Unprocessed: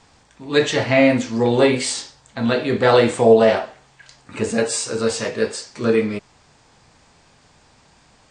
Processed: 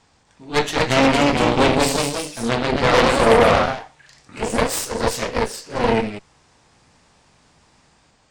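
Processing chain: ever faster or slower copies 268 ms, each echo +1 st, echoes 3; Chebyshev shaper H 8 -12 dB, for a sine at 2.5 dBFS; trim -5 dB

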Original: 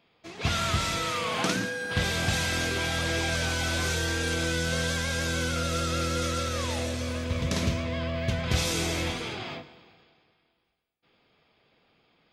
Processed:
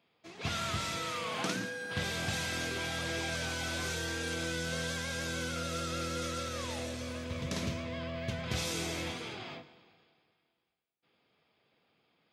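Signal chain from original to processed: high-pass 93 Hz; trim -7 dB

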